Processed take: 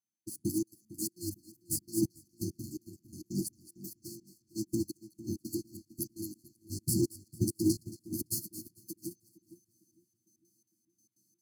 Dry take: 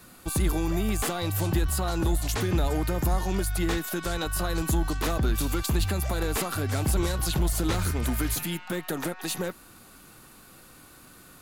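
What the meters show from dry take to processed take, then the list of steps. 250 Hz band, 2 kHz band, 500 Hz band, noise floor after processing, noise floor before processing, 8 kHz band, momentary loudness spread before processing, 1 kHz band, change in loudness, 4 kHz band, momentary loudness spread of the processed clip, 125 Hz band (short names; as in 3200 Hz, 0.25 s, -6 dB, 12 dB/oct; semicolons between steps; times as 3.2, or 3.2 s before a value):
-5.0 dB, under -40 dB, -10.5 dB, -80 dBFS, -52 dBFS, -6.5 dB, 5 LU, under -40 dB, -9.0 dB, -13.5 dB, 16 LU, -13.0 dB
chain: minimum comb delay 9.2 ms; HPF 120 Hz 24 dB/oct; whine 6200 Hz -51 dBFS; step gate "...x.xx." 168 bpm -24 dB; in parallel at -4 dB: short-mantissa float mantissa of 2-bit; on the sum: brick-wall FIR band-stop 380–4200 Hz; on a send: split-band echo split 1000 Hz, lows 0.454 s, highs 0.223 s, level -6 dB; on the sum: upward expander 2.5:1, over -39 dBFS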